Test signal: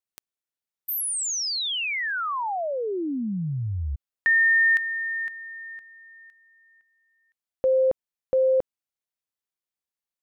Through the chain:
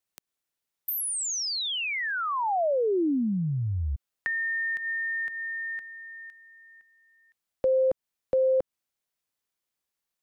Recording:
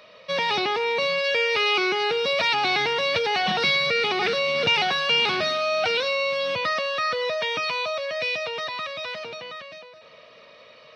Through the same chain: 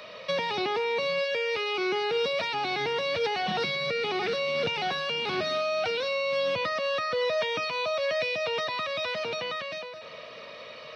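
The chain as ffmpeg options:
-filter_complex "[0:a]asplit=2[s0][s1];[s1]acompressor=threshold=0.0282:ratio=6:attack=0.12:release=300:detection=peak,volume=0.944[s2];[s0][s2]amix=inputs=2:normalize=0,alimiter=limit=0.133:level=0:latency=1:release=124,acrossover=split=320|700[s3][s4][s5];[s3]acompressor=threshold=0.0447:ratio=4[s6];[s4]acompressor=threshold=0.0562:ratio=4[s7];[s5]acompressor=threshold=0.0316:ratio=4[s8];[s6][s7][s8]amix=inputs=3:normalize=0"

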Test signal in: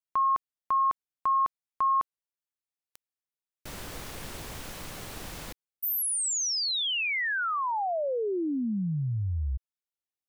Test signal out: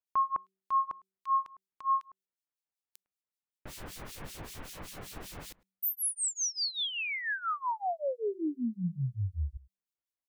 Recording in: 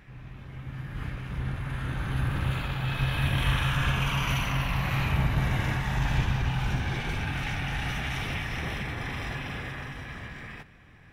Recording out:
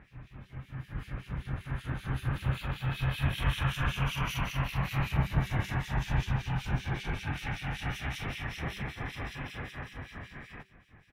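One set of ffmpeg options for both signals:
-filter_complex "[0:a]asplit=2[s0][s1];[s1]adelay=105,volume=0.0501,highshelf=f=4000:g=-2.36[s2];[s0][s2]amix=inputs=2:normalize=0,acrossover=split=2400[s3][s4];[s3]aeval=exprs='val(0)*(1-1/2+1/2*cos(2*PI*5.2*n/s))':c=same[s5];[s4]aeval=exprs='val(0)*(1-1/2-1/2*cos(2*PI*5.2*n/s))':c=same[s6];[s5][s6]amix=inputs=2:normalize=0,bandreject=f=191.5:t=h:w=4,bandreject=f=383:t=h:w=4"

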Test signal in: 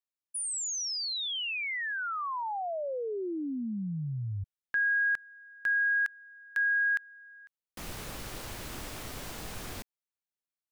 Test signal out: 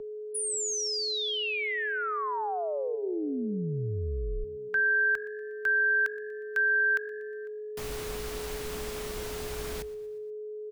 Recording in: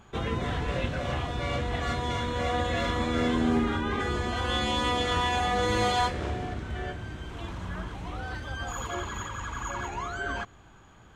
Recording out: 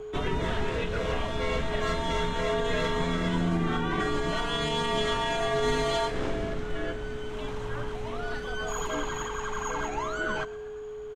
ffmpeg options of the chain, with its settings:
-filter_complex "[0:a]alimiter=limit=0.1:level=0:latency=1:release=110,asplit=5[s0][s1][s2][s3][s4];[s1]adelay=120,afreqshift=48,volume=0.1[s5];[s2]adelay=240,afreqshift=96,volume=0.0537[s6];[s3]adelay=360,afreqshift=144,volume=0.0292[s7];[s4]adelay=480,afreqshift=192,volume=0.0157[s8];[s0][s5][s6][s7][s8]amix=inputs=5:normalize=0,aeval=exprs='val(0)+0.0126*sin(2*PI*490*n/s)':c=same,afreqshift=-65,volume=1.26"

